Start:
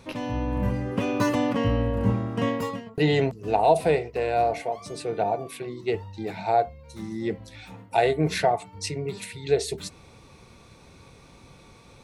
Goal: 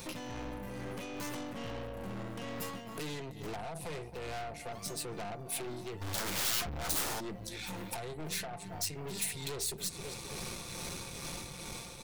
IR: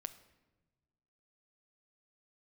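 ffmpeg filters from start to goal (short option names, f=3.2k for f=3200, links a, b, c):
-filter_complex "[0:a]aecho=1:1:5.7:0.37,asplit=2[a][b];[b]adelay=267,lowpass=f=4.5k:p=1,volume=-21dB,asplit=2[c][d];[d]adelay=267,lowpass=f=4.5k:p=1,volume=0.48,asplit=2[e][f];[f]adelay=267,lowpass=f=4.5k:p=1,volume=0.48[g];[c][e][g]amix=inputs=3:normalize=0[h];[a][h]amix=inputs=2:normalize=0,dynaudnorm=f=290:g=13:m=11.5dB,acrossover=split=230[i][j];[i]alimiter=level_in=13dB:limit=-24dB:level=0:latency=1:release=453,volume=-13dB[k];[j]acompressor=threshold=-39dB:ratio=6[l];[k][l]amix=inputs=2:normalize=0,tremolo=f=2.3:d=0.47,asplit=3[m][n][o];[m]afade=t=out:st=6.01:d=0.02[p];[n]aeval=exprs='0.0316*sin(PI/2*5.62*val(0)/0.0316)':c=same,afade=t=in:st=6.01:d=0.02,afade=t=out:st=7.19:d=0.02[q];[o]afade=t=in:st=7.19:d=0.02[r];[p][q][r]amix=inputs=3:normalize=0,aeval=exprs='(tanh(141*val(0)+0.55)-tanh(0.55))/141':c=same,aemphasis=mode=production:type=75kf,volume=4.5dB"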